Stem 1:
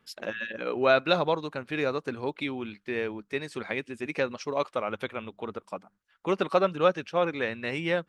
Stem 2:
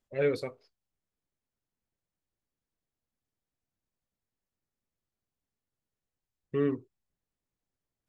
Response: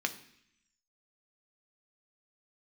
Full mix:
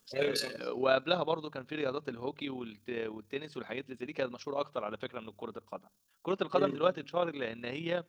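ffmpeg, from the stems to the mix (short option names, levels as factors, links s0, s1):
-filter_complex "[0:a]lowpass=1700,volume=0.631,asplit=3[s0][s1][s2];[s1]volume=0.0631[s3];[1:a]volume=0.841,asplit=2[s4][s5];[s5]volume=0.447[s6];[s2]apad=whole_len=356704[s7];[s4][s7]sidechaincompress=threshold=0.00355:ratio=8:attack=39:release=140[s8];[2:a]atrim=start_sample=2205[s9];[s3][s6]amix=inputs=2:normalize=0[s10];[s10][s9]afir=irnorm=-1:irlink=0[s11];[s0][s8][s11]amix=inputs=3:normalize=0,bandreject=f=49.36:t=h:w=4,bandreject=f=98.72:t=h:w=4,bandreject=f=148.08:t=h:w=4,aexciter=amount=8.3:drive=4.3:freq=3100,tremolo=f=36:d=0.519"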